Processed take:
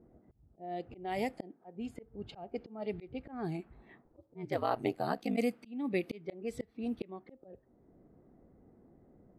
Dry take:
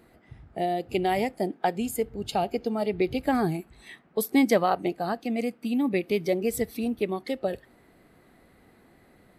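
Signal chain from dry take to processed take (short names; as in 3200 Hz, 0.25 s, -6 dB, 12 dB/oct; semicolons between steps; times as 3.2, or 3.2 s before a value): auto swell 0.501 s; low-pass opened by the level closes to 450 Hz, open at -28.5 dBFS; 4.04–5.36 ring modulator 160 Hz -> 25 Hz; gain -2 dB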